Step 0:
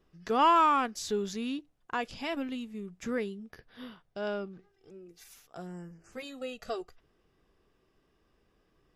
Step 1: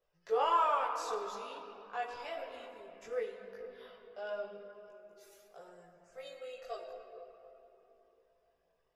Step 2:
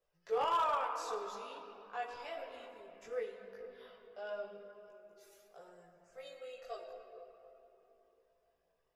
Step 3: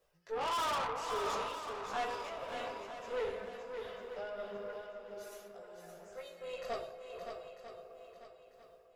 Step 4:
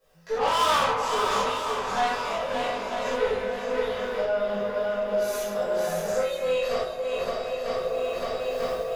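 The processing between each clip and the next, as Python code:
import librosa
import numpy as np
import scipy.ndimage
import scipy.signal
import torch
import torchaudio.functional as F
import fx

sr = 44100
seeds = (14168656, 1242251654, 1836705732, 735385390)

y1 = fx.low_shelf_res(x, sr, hz=380.0, db=-10.5, q=3.0)
y1 = fx.room_shoebox(y1, sr, seeds[0], volume_m3=200.0, walls='hard', distance_m=0.35)
y1 = fx.chorus_voices(y1, sr, voices=4, hz=0.33, base_ms=19, depth_ms=1.7, mix_pct=55)
y1 = y1 * librosa.db_to_amplitude(-7.0)
y2 = np.clip(y1, -10.0 ** (-24.5 / 20.0), 10.0 ** (-24.5 / 20.0))
y2 = y2 * librosa.db_to_amplitude(-2.5)
y3 = y2 * (1.0 - 0.74 / 2.0 + 0.74 / 2.0 * np.cos(2.0 * np.pi * 1.5 * (np.arange(len(y2)) / sr)))
y3 = fx.tube_stage(y3, sr, drive_db=44.0, bias=0.5)
y3 = fx.echo_swing(y3, sr, ms=945, ratio=1.5, feedback_pct=32, wet_db=-7.0)
y3 = y3 * librosa.db_to_amplitude(11.5)
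y4 = fx.reverse_delay(y3, sr, ms=471, wet_db=-13.0)
y4 = fx.recorder_agc(y4, sr, target_db=-30.5, rise_db_per_s=22.0, max_gain_db=30)
y4 = fx.rev_gated(y4, sr, seeds[1], gate_ms=110, shape='flat', drr_db=-8.0)
y4 = y4 * librosa.db_to_amplitude(2.5)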